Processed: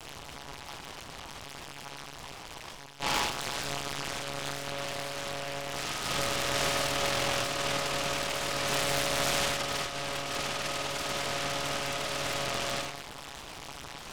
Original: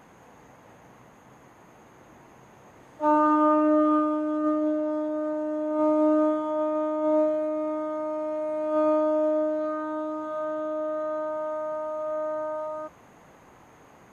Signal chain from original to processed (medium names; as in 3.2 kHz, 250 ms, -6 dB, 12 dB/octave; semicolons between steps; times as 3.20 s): comb filter that takes the minimum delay 3.4 ms; overload inside the chain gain 25.5 dB; reverse; upward compressor, threshold -37 dBFS; reverse; elliptic low-pass 2.5 kHz; resonant low shelf 760 Hz -6 dB, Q 1.5; de-hum 153.2 Hz, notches 4; compression 4:1, threshold -35 dBFS, peak gain reduction 8.5 dB; flutter echo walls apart 5.3 m, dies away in 0.56 s; monotone LPC vocoder at 8 kHz 140 Hz; buffer glitch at 6.17/7.06/12.44 s, samples 1024, times 15; delay time shaken by noise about 1.8 kHz, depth 0.19 ms; trim +2.5 dB